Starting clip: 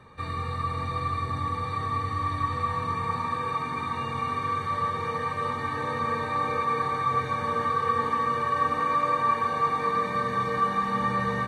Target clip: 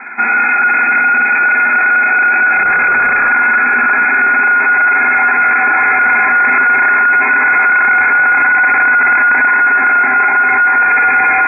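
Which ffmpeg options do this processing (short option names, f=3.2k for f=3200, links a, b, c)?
-filter_complex "[0:a]asettb=1/sr,asplit=3[a][b][c];[a]atrim=end=9.514[d];[b]atrim=start=9.51:end=10.76,asetpts=PTS-STARTPTS,afade=t=in:d=0.004:c=qsin,afade=t=out:st=1.246:d=0.004:c=qsin,lowshelf=f=370:g=-11[e];[c]atrim=start=10.756[f];[d][e]acrossfade=d=0.004:c1=hsin:c2=qsin[g];[g][f]acrossfade=d=0.004:c1=qsin:c2=hsin,asplit=2[h][i];[i]highpass=f=720:p=1,volume=18dB,asoftclip=type=tanh:threshold=-12.5dB[j];[h][j]amix=inputs=2:normalize=0,lowpass=f=2k:p=1,volume=-6dB,asettb=1/sr,asplit=3[k][l][m];[k]atrim=end=2.544[n];[l]atrim=start=2.54:end=3.3,asetpts=PTS-STARTPTS,afade=t=in:d=0.004:c=qsin,afade=t=out:st=0.756:d=0.004:c=qsin,aeval=exprs='0.0841*(abs(mod(val(0)/0.0841+3,4)-2)-1)':c=same[o];[m]atrim=start=3.296[p];[n][o]acrossfade=d=0.004:c1=hsin:c2=qsin[q];[q][p]acrossfade=d=0.004:c1=qsin:c2=hsin,apsyclip=23dB,lowpass=f=2.2k:t=q:w=0.5098,lowpass=f=2.2k:t=q:w=0.6013,lowpass=f=2.2k:t=q:w=0.9,lowpass=f=2.2k:t=q:w=2.563,afreqshift=-2600,volume=-7dB"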